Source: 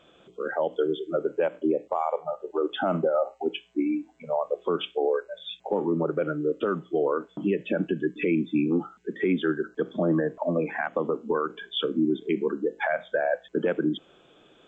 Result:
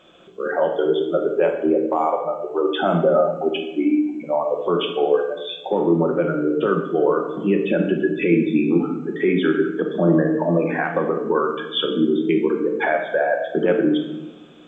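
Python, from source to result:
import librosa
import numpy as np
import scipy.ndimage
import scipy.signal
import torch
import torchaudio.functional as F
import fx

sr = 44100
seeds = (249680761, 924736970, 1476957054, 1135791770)

y = fx.low_shelf(x, sr, hz=77.0, db=-8.0)
y = fx.room_shoebox(y, sr, seeds[0], volume_m3=480.0, walls='mixed', distance_m=1.0)
y = y * librosa.db_to_amplitude(5.0)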